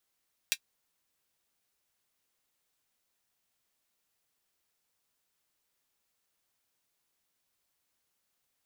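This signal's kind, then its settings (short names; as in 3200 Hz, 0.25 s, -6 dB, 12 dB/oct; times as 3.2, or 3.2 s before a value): closed hi-hat, high-pass 2500 Hz, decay 0.07 s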